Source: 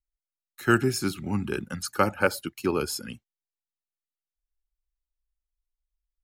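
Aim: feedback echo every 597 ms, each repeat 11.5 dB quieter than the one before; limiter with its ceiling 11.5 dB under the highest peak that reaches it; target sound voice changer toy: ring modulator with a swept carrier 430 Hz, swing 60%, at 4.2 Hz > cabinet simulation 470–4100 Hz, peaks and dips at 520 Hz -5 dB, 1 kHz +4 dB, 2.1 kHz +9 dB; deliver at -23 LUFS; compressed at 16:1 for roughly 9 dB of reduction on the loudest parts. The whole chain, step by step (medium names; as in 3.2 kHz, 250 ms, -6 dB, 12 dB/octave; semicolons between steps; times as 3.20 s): compression 16:1, threshold -24 dBFS; peak limiter -23.5 dBFS; feedback delay 597 ms, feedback 27%, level -11.5 dB; ring modulator with a swept carrier 430 Hz, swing 60%, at 4.2 Hz; cabinet simulation 470–4100 Hz, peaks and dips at 520 Hz -5 dB, 1 kHz +4 dB, 2.1 kHz +9 dB; trim +17 dB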